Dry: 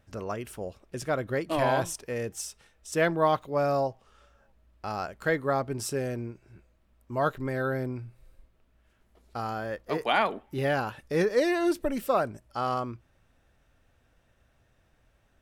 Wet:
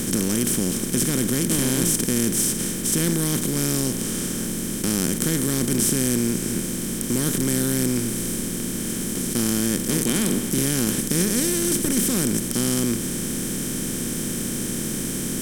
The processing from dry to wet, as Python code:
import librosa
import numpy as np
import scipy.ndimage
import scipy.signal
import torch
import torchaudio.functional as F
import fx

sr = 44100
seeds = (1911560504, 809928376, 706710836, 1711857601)

y = fx.bin_compress(x, sr, power=0.2)
y = fx.curve_eq(y, sr, hz=(110.0, 230.0, 670.0, 1200.0, 9800.0), db=(0, 8, -23, -18, 13))